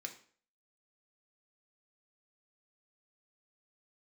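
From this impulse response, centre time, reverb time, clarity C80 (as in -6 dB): 11 ms, 0.50 s, 15.5 dB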